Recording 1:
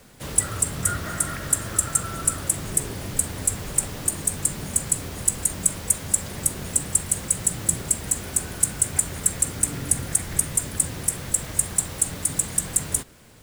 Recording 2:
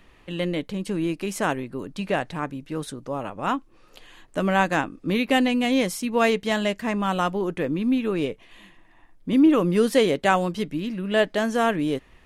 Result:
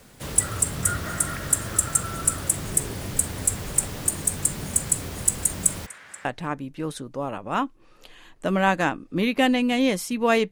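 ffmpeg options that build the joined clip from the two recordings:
-filter_complex "[0:a]asplit=3[a][b][c];[a]afade=t=out:st=5.85:d=0.02[d];[b]bandpass=f=1.7k:t=q:w=2.2:csg=0,afade=t=in:st=5.85:d=0.02,afade=t=out:st=6.25:d=0.02[e];[c]afade=t=in:st=6.25:d=0.02[f];[d][e][f]amix=inputs=3:normalize=0,apad=whole_dur=10.51,atrim=end=10.51,atrim=end=6.252[g];[1:a]atrim=start=2.168:end=6.43[h];[g][h]acrossfade=d=0.004:c1=hsin:c2=hsin"

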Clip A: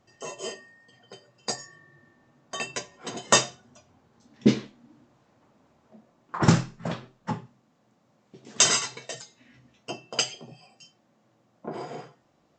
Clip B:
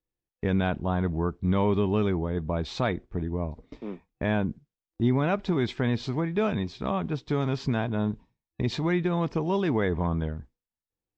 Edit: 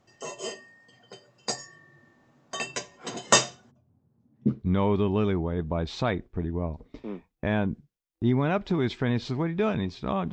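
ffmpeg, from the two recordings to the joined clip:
-filter_complex "[0:a]asplit=3[a][b][c];[a]afade=t=out:st=3.7:d=0.02[d];[b]bandpass=f=120:t=q:w=1.2:csg=0,afade=t=in:st=3.7:d=0.02,afade=t=out:st=4.64:d=0.02[e];[c]afade=t=in:st=4.64:d=0.02[f];[d][e][f]amix=inputs=3:normalize=0,apad=whole_dur=10.32,atrim=end=10.32,atrim=end=4.64,asetpts=PTS-STARTPTS[g];[1:a]atrim=start=1.26:end=7.1,asetpts=PTS-STARTPTS[h];[g][h]acrossfade=d=0.16:c1=tri:c2=tri"

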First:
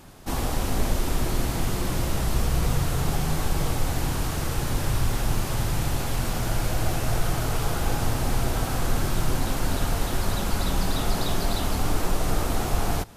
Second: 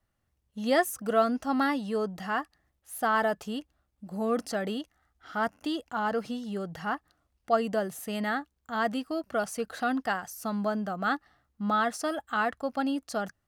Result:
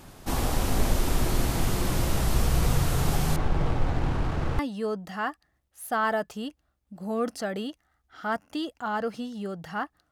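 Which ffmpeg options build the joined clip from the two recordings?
-filter_complex "[0:a]asettb=1/sr,asplit=3[a][b][c];[a]atrim=end=3.364[d];[b]atrim=start=3.36:end=4.59,asetpts=PTS-STARTPTS,afade=t=in:d=0.004:c=qsin,afade=t=out:st=1.226:d=0.004:c=qsin,adynamicsmooth=sensitivity=2.5:basefreq=1.6k[e];[c]atrim=start=4.586[f];[d][e]acrossfade=d=0.004:c1=hsin:c2=qsin[g];[g][f]acrossfade=d=0.004:c1=qsin:c2=hsin,apad=whole_dur=10.11,atrim=end=10.11,atrim=end=4.592[h];[1:a]atrim=start=1.698:end=7.22[i];[h][i]acrossfade=d=0.004:c1=hsin:c2=hsin"

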